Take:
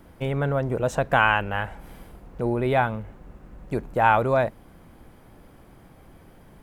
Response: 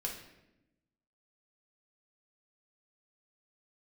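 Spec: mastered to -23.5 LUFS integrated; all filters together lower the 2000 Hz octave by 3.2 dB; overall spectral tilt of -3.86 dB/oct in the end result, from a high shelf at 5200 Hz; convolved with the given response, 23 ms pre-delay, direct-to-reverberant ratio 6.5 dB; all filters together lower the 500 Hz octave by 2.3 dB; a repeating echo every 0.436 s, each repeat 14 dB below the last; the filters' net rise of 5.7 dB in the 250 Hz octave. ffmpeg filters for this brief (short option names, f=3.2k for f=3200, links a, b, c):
-filter_complex "[0:a]equalizer=f=250:t=o:g=8.5,equalizer=f=500:t=o:g=-5,equalizer=f=2k:t=o:g=-4,highshelf=f=5.2k:g=-5,aecho=1:1:436|872:0.2|0.0399,asplit=2[a][b];[1:a]atrim=start_sample=2205,adelay=23[c];[b][c]afir=irnorm=-1:irlink=0,volume=-7.5dB[d];[a][d]amix=inputs=2:normalize=0"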